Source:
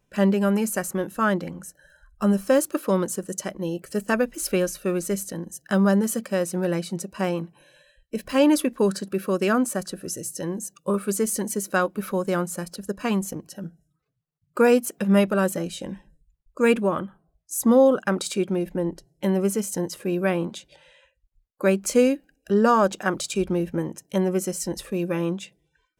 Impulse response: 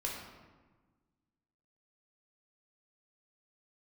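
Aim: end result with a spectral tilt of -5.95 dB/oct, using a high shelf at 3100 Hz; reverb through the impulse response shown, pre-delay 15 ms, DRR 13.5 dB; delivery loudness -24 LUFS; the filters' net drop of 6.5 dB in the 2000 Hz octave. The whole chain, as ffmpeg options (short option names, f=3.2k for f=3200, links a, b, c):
-filter_complex "[0:a]equalizer=f=2k:t=o:g=-6.5,highshelf=f=3.1k:g=-8.5,asplit=2[a][b];[1:a]atrim=start_sample=2205,adelay=15[c];[b][c]afir=irnorm=-1:irlink=0,volume=-16dB[d];[a][d]amix=inputs=2:normalize=0,volume=0.5dB"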